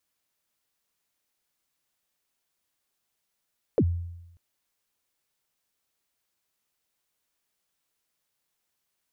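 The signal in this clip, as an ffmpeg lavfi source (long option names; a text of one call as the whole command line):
ffmpeg -f lavfi -i "aevalsrc='0.158*pow(10,-3*t/0.93)*sin(2*PI*(560*0.059/log(86/560)*(exp(log(86/560)*min(t,0.059)/0.059)-1)+86*max(t-0.059,0)))':duration=0.59:sample_rate=44100" out.wav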